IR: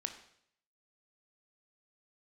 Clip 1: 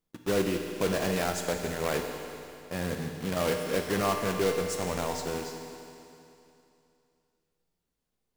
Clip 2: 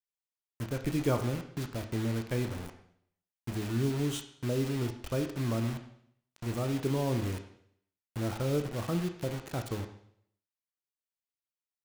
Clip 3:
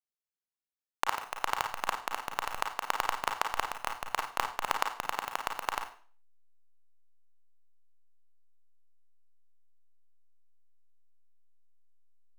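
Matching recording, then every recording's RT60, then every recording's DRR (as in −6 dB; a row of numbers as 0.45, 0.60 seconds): 2; 2.8, 0.65, 0.45 seconds; 3.0, 6.0, 3.0 decibels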